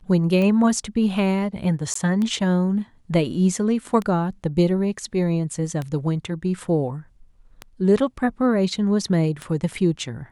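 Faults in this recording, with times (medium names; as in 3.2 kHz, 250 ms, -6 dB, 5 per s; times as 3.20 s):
tick 33 1/3 rpm -15 dBFS
1.94–1.95 s: dropout 14 ms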